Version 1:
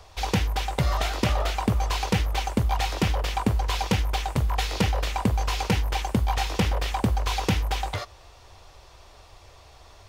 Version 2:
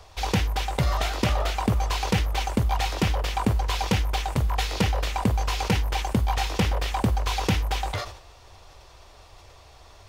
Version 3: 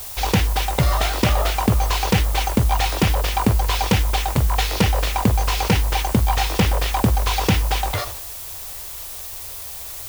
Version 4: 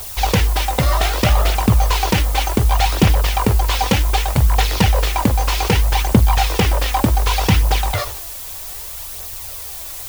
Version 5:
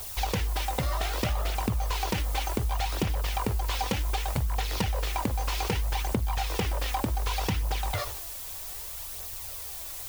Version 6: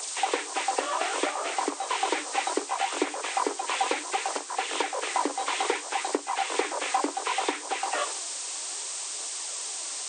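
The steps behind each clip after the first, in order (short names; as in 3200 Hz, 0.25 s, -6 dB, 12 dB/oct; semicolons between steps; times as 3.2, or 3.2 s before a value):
sustainer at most 89 dB/s
added noise blue -39 dBFS; gain +5.5 dB
phaser 0.65 Hz, delay 4.1 ms, feedback 36%; gain +2 dB
compressor 5:1, threshold -17 dBFS, peak gain reduction 10 dB; gain -8 dB
nonlinear frequency compression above 1500 Hz 1.5:1; rippled Chebyshev high-pass 280 Hz, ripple 3 dB; gain +6.5 dB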